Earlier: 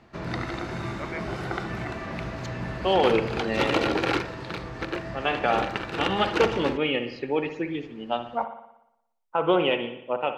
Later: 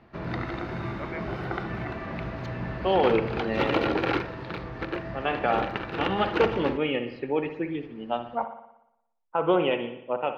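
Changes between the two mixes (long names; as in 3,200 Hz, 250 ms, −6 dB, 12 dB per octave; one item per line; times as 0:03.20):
background: remove high-frequency loss of the air 92 metres
master: add high-frequency loss of the air 290 metres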